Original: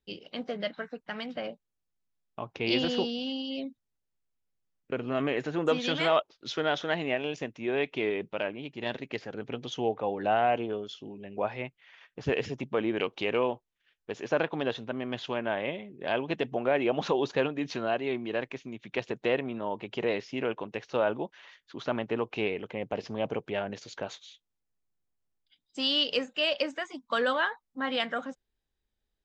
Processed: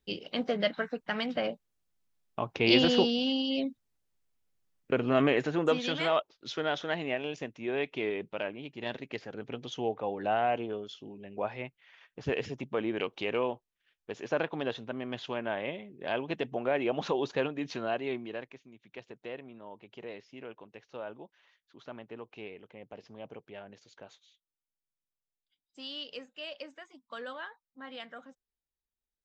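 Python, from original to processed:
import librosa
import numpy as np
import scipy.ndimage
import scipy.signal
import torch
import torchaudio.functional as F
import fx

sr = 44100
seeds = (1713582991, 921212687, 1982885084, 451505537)

y = fx.gain(x, sr, db=fx.line((5.23, 4.5), (5.93, -3.0), (18.13, -3.0), (18.66, -14.0)))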